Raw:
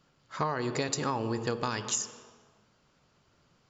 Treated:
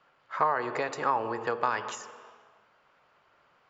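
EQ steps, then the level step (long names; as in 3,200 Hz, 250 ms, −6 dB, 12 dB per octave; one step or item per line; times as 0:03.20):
low-shelf EQ 360 Hz −5.5 dB
dynamic equaliser 3,400 Hz, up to −5 dB, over −49 dBFS, Q 0.76
three-way crossover with the lows and the highs turned down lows −15 dB, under 480 Hz, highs −21 dB, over 2,700 Hz
+8.5 dB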